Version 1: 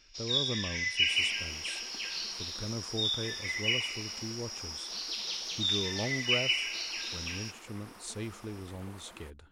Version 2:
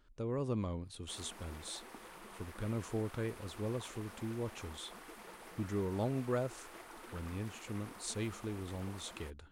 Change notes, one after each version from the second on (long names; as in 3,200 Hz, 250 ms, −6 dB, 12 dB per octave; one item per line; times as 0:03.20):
first sound: muted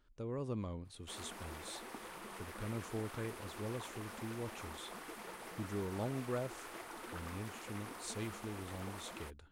speech −4.0 dB
background +5.0 dB
reverb: off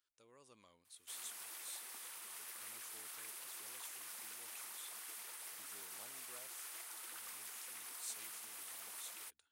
background +7.0 dB
master: add first difference